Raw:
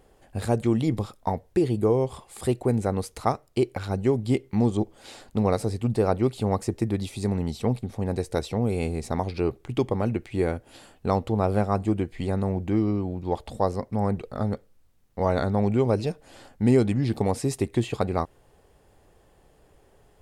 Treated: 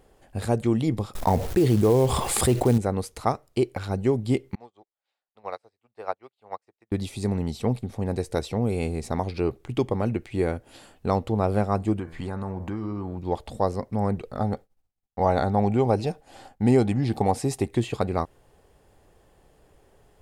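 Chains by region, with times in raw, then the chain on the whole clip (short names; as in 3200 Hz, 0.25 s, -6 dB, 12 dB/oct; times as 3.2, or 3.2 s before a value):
1.15–2.78 low shelf 170 Hz +2 dB + companded quantiser 6-bit + fast leveller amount 70%
4.55–6.92 three-band isolator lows -23 dB, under 560 Hz, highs -14 dB, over 4300 Hz + upward expander 2.5:1, over -51 dBFS
11.99–13.18 band shelf 1200 Hz +8.5 dB 1.2 oct + de-hum 81.48 Hz, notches 28 + compressor 5:1, threshold -27 dBFS
14.39–17.71 expander -49 dBFS + bell 780 Hz +10 dB 0.26 oct
whole clip: dry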